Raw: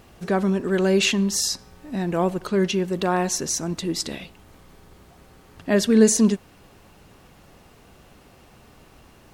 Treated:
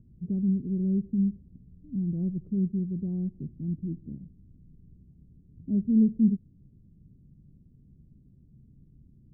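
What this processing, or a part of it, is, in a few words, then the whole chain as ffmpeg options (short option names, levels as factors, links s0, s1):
the neighbour's flat through the wall: -af "lowpass=f=240:w=0.5412,lowpass=f=240:w=1.3066,equalizer=f=140:t=o:w=0.5:g=5.5,volume=0.708"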